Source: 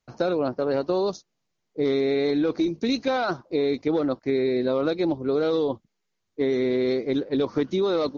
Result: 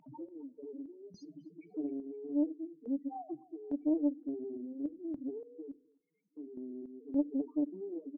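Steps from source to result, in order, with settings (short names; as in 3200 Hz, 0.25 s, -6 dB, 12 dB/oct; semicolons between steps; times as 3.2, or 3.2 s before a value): 0.69–2.22 zero-crossing step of -32.5 dBFS; HPF 150 Hz 24 dB/oct; comb 6.6 ms, depth 45%; in parallel at +2.5 dB: compressor, threshold -31 dBFS, peak gain reduction 14 dB; on the sum: loudest bins only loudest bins 2; vowel filter u; random-step tremolo, depth 90%; upward compressor, threshold -32 dBFS; narrowing echo 0.259 s, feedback 46%, band-pass 1600 Hz, level -17 dB; on a send at -20 dB: reverb RT60 0.45 s, pre-delay 10 ms; on the sum: Doppler distortion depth 0.32 ms; gain -4 dB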